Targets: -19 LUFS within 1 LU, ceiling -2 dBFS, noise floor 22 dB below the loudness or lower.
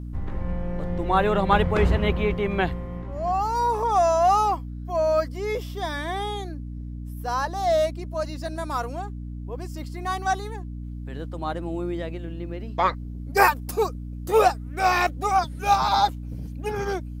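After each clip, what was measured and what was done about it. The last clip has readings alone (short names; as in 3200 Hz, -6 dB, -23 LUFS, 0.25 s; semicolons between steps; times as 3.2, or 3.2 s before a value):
hum 60 Hz; harmonics up to 300 Hz; hum level -32 dBFS; loudness -24.5 LUFS; peak -3.5 dBFS; loudness target -19.0 LUFS
-> de-hum 60 Hz, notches 5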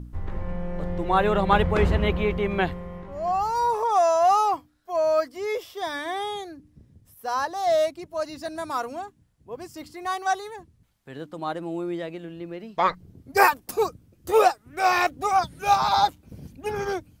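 hum none; loudness -24.5 LUFS; peak -3.5 dBFS; loudness target -19.0 LUFS
-> gain +5.5 dB; limiter -2 dBFS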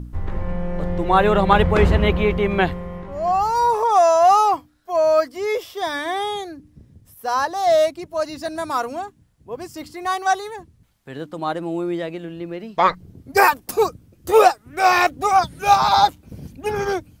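loudness -19.0 LUFS; peak -2.0 dBFS; noise floor -55 dBFS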